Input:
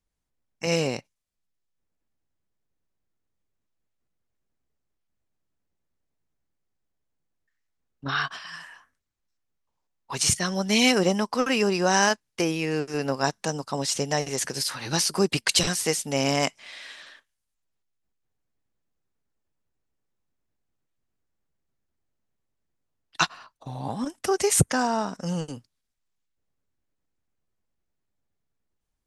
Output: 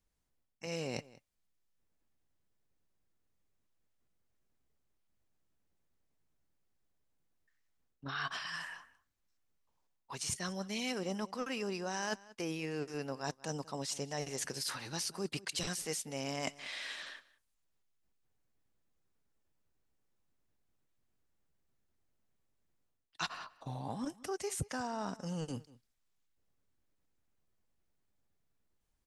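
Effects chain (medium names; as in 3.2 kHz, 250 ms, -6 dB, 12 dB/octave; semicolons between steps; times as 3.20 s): reverse; compression 5:1, threshold -37 dBFS, peak gain reduction 20.5 dB; reverse; echo from a far wall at 32 m, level -20 dB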